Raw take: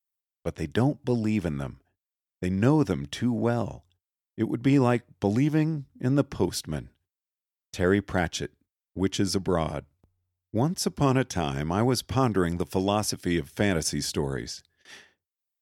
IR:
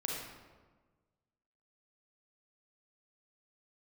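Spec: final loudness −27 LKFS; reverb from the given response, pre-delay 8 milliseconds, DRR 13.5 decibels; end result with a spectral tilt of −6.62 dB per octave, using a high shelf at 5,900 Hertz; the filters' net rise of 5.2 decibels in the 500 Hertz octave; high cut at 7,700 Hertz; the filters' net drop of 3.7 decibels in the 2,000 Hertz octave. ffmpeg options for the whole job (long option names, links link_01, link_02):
-filter_complex "[0:a]lowpass=7700,equalizer=frequency=500:width_type=o:gain=7,equalizer=frequency=2000:width_type=o:gain=-6,highshelf=frequency=5900:gain=5,asplit=2[link_01][link_02];[1:a]atrim=start_sample=2205,adelay=8[link_03];[link_02][link_03]afir=irnorm=-1:irlink=0,volume=-16.5dB[link_04];[link_01][link_04]amix=inputs=2:normalize=0,volume=-2.5dB"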